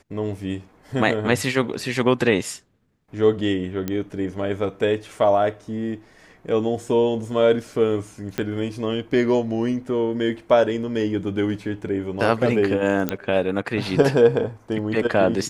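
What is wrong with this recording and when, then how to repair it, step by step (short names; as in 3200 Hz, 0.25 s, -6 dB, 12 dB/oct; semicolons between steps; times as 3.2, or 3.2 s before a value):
3.88 pop -12 dBFS
8.38 pop -11 dBFS
13.09 pop -8 dBFS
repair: de-click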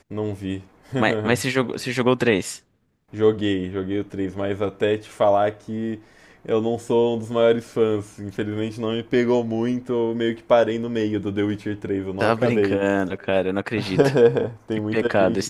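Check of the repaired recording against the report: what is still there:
none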